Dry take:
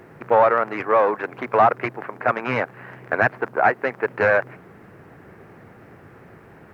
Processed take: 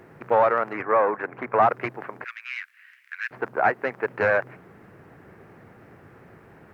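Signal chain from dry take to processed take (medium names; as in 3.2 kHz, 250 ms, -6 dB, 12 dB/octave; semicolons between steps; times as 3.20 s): 0.73–1.62 s: resonant high shelf 2.6 kHz -7.5 dB, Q 1.5; 2.24–3.31 s: inverse Chebyshev high-pass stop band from 750 Hz, stop band 50 dB; trim -3.5 dB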